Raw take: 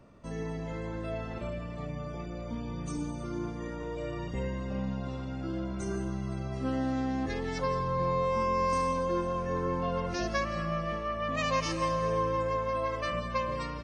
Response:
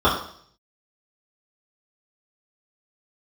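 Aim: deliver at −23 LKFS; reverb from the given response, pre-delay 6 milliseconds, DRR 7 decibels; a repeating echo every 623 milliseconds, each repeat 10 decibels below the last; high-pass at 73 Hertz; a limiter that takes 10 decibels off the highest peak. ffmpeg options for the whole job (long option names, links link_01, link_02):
-filter_complex "[0:a]highpass=73,alimiter=level_in=3.5dB:limit=-24dB:level=0:latency=1,volume=-3.5dB,aecho=1:1:623|1246|1869|2492:0.316|0.101|0.0324|0.0104,asplit=2[link_01][link_02];[1:a]atrim=start_sample=2205,adelay=6[link_03];[link_02][link_03]afir=irnorm=-1:irlink=0,volume=-29dB[link_04];[link_01][link_04]amix=inputs=2:normalize=0,volume=12dB"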